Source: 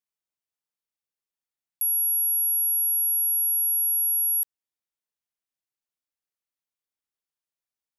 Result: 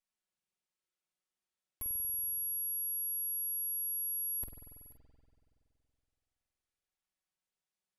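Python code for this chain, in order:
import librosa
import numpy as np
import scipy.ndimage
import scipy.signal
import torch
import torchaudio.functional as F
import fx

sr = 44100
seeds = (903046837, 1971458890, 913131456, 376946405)

p1 = fx.lower_of_two(x, sr, delay_ms=5.4)
p2 = scipy.signal.sosfilt(scipy.signal.butter(4, 11000.0, 'lowpass', fs=sr, output='sos'), p1)
p3 = np.clip(p2, -10.0 ** (-37.5 / 20.0), 10.0 ** (-37.5 / 20.0))
p4 = fx.doubler(p3, sr, ms=47.0, db=-11)
p5 = p4 + fx.echo_single(p4, sr, ms=486, db=-20.0, dry=0)
y = fx.rev_spring(p5, sr, rt60_s=2.7, pass_ms=(47,), chirp_ms=25, drr_db=2.0)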